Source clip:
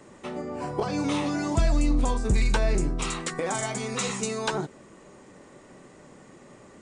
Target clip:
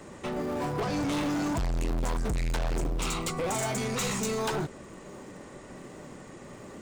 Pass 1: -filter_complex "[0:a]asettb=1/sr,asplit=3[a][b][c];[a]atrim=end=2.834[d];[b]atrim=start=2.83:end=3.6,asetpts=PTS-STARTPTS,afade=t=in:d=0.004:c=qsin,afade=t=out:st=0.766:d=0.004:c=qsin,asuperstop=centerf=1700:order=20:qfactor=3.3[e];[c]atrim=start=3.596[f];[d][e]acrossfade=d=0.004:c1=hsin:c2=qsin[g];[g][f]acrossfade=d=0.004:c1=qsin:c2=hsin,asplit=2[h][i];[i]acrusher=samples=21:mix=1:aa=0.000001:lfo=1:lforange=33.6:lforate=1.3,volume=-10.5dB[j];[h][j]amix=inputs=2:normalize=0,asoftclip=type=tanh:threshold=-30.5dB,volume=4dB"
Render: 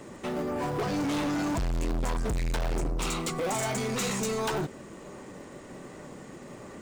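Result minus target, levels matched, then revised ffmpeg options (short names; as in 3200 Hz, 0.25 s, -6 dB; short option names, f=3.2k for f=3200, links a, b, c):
decimation with a swept rate: distortion -6 dB
-filter_complex "[0:a]asettb=1/sr,asplit=3[a][b][c];[a]atrim=end=2.834[d];[b]atrim=start=2.83:end=3.6,asetpts=PTS-STARTPTS,afade=t=in:d=0.004:c=qsin,afade=t=out:st=0.766:d=0.004:c=qsin,asuperstop=centerf=1700:order=20:qfactor=3.3[e];[c]atrim=start=3.596[f];[d][e]acrossfade=d=0.004:c1=hsin:c2=qsin[g];[g][f]acrossfade=d=0.004:c1=qsin:c2=hsin,asplit=2[h][i];[i]acrusher=samples=70:mix=1:aa=0.000001:lfo=1:lforange=112:lforate=1.3,volume=-10.5dB[j];[h][j]amix=inputs=2:normalize=0,asoftclip=type=tanh:threshold=-30.5dB,volume=4dB"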